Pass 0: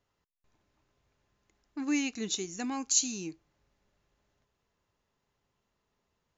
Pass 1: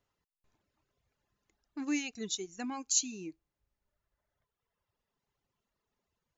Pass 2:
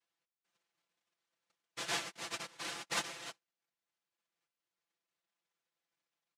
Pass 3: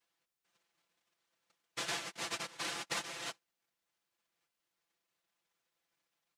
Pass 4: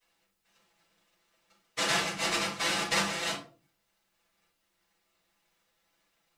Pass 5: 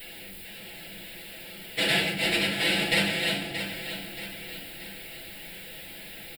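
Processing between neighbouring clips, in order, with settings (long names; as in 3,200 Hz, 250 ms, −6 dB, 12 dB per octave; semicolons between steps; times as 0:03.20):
reverb reduction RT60 1.8 s; level −2.5 dB
cochlear-implant simulation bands 1; bass and treble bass −4 dB, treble −7 dB; comb filter 5.9 ms, depth 80%; level −4.5 dB
downward compressor 6 to 1, threshold −40 dBFS, peak gain reduction 10 dB; level +5 dB
rectangular room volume 220 cubic metres, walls furnished, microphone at 6.2 metres
converter with a step at zero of −41 dBFS; phaser with its sweep stopped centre 2,700 Hz, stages 4; on a send: repeating echo 627 ms, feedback 45%, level −9.5 dB; on the sum: level +6.5 dB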